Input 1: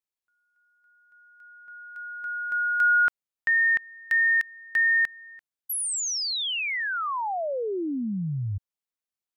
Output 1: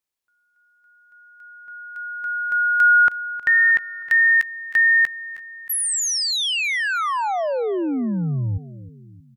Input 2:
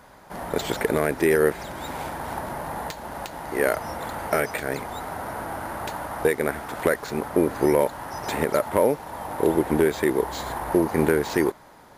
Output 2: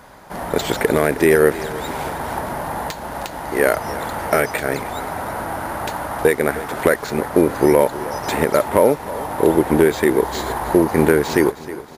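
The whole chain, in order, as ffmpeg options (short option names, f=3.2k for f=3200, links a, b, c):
-af "aecho=1:1:314|628|942|1256:0.158|0.0761|0.0365|0.0175,volume=6dB"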